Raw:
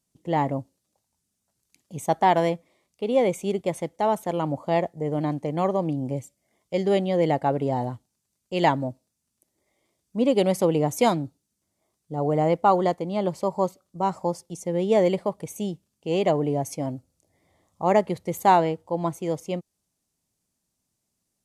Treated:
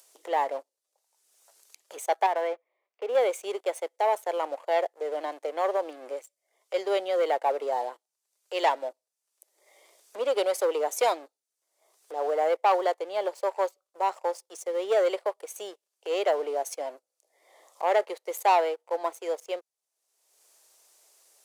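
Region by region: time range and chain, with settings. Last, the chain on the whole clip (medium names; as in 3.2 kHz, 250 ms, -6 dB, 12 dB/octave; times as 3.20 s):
2.26–3.15 s: Chebyshev band-pass 180–2000 Hz + compression, threshold -20 dBFS
whole clip: waveshaping leveller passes 2; steep high-pass 430 Hz 36 dB/octave; upward compressor, threshold -30 dBFS; trim -7.5 dB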